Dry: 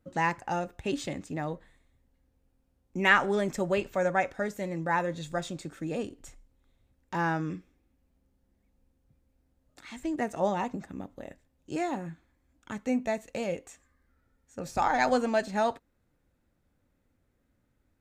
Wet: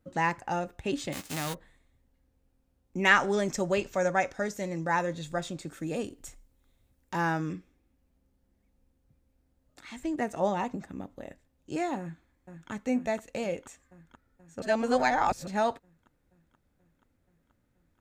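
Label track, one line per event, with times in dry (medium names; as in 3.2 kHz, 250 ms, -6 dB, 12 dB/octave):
1.120000	1.530000	formants flattened exponent 0.3
3.050000	5.130000	peaking EQ 5.9 kHz +9 dB 0.72 oct
5.670000	7.530000	treble shelf 6.6 kHz +9 dB
11.990000	12.710000	echo throw 480 ms, feedback 75%, level -8 dB
14.620000	15.470000	reverse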